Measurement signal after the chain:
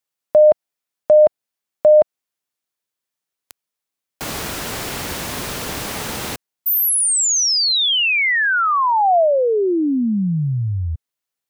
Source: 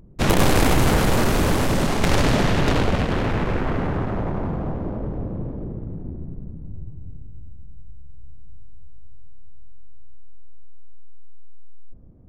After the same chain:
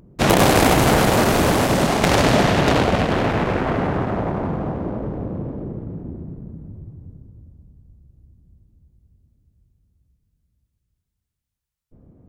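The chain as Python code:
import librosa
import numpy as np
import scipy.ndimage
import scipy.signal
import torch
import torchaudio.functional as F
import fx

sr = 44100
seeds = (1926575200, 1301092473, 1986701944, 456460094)

y = fx.highpass(x, sr, hz=120.0, slope=6)
y = fx.dynamic_eq(y, sr, hz=690.0, q=2.7, threshold_db=-34.0, ratio=4.0, max_db=4)
y = F.gain(torch.from_numpy(y), 4.0).numpy()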